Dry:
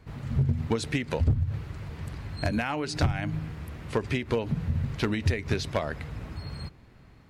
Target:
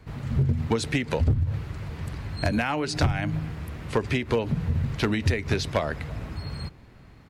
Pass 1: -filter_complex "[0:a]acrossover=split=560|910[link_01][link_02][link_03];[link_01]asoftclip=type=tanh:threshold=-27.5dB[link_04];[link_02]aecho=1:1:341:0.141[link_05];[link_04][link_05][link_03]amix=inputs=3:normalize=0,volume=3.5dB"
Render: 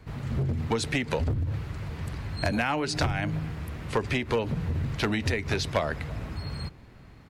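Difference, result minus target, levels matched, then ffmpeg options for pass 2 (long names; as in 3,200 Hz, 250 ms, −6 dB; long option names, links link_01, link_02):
soft clipping: distortion +11 dB
-filter_complex "[0:a]acrossover=split=560|910[link_01][link_02][link_03];[link_01]asoftclip=type=tanh:threshold=-18dB[link_04];[link_02]aecho=1:1:341:0.141[link_05];[link_04][link_05][link_03]amix=inputs=3:normalize=0,volume=3.5dB"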